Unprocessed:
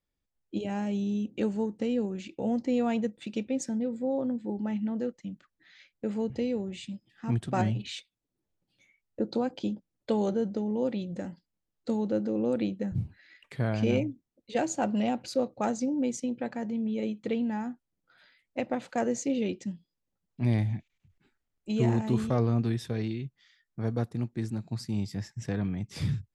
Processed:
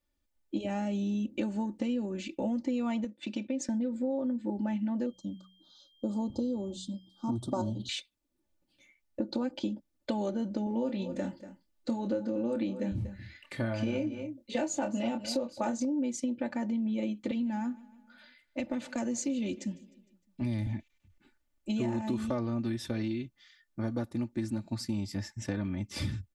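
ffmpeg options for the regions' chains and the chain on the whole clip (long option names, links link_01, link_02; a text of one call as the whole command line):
ffmpeg -i in.wav -filter_complex "[0:a]asettb=1/sr,asplit=3[link_01][link_02][link_03];[link_01]atrim=end=3.044[link_04];[link_02]atrim=start=3.04:end=3.69,asetpts=PTS-STARTPTS,afade=type=in:duration=0.004:curve=qsin,afade=type=out:start_time=0.646:duration=0.004:curve=qsin,acompressor=threshold=-33dB:ratio=2.5:attack=3.2:release=140:knee=1:detection=peak,agate=range=-8dB:threshold=-48dB:ratio=16:release=100:detection=peak,highpass=100,lowpass=7400[link_05];[link_03]atrim=start=3.686[link_06];[link_04][link_05]acrossfade=duration=0.004:curve1=hsin:curve2=qsin[link_07];[link_07][link_06]acrossfade=duration=0.004:curve1=qsin:curve2=hsin,asettb=1/sr,asplit=3[link_08][link_09][link_10];[link_08]atrim=end=5.064[link_11];[link_09]atrim=start=5.06:end=7.89,asetpts=PTS-STARTPTS,afade=type=in:duration=0.004:curve=qsin,afade=type=out:start_time=2.826:duration=0.004:curve=qsin,bandreject=frequency=62.46:width_type=h:width=4,bandreject=frequency=124.92:width_type=h:width=4,bandreject=frequency=187.38:width_type=h:width=4,aeval=exprs='val(0)+0.00112*sin(2*PI*3200*n/s)':channel_layout=same,asuperstop=centerf=2100:order=8:qfactor=0.89[link_12];[link_10]atrim=start=7.886[link_13];[link_11][link_12]acrossfade=duration=0.004:curve1=hsin:curve2=qsin[link_14];[link_14][link_13]acrossfade=duration=0.004:curve1=qsin:curve2=hsin,asettb=1/sr,asplit=3[link_15][link_16][link_17];[link_15]atrim=end=10.644[link_18];[link_16]atrim=start=10.64:end=15.85,asetpts=PTS-STARTPTS,afade=type=in:duration=0.004:curve=qsin,afade=type=out:start_time=5.206:duration=0.004:curve=qsin,asplit=2[link_19][link_20];[link_20]adelay=26,volume=-7dB[link_21];[link_19][link_21]amix=inputs=2:normalize=0,atrim=end_sample=229761,aecho=1:1:238:0.178,atrim=end_sample=229761[link_22];[link_17]atrim=start=15.846[link_23];[link_18][link_22]acrossfade=duration=0.004:curve1=hsin:curve2=qsin[link_24];[link_24][link_23]acrossfade=duration=0.004:curve1=qsin:curve2=hsin,asettb=1/sr,asplit=3[link_25][link_26][link_27];[link_25]atrim=end=17.314[link_28];[link_26]atrim=start=17.31:end=20.67,asetpts=PTS-STARTPTS,afade=type=in:duration=0.004:curve=qsin,afade=type=out:start_time=3.356:duration=0.004:curve=qsin,acrossover=split=230|3000[link_29][link_30][link_31];[link_30]acompressor=threshold=-42dB:ratio=2:attack=3.2:release=140:knee=2.83:detection=peak[link_32];[link_29][link_32][link_31]amix=inputs=3:normalize=0,aecho=1:1:153|306|459|612:0.075|0.0412|0.0227|0.0125,atrim=end_sample=148176[link_33];[link_27]atrim=start=20.666[link_34];[link_28][link_33]acrossfade=duration=0.004:curve1=hsin:curve2=qsin[link_35];[link_35][link_34]acrossfade=duration=0.004:curve1=qsin:curve2=hsin,aecho=1:1:3.4:0.76,acompressor=threshold=-30dB:ratio=6,volume=1.5dB" out.wav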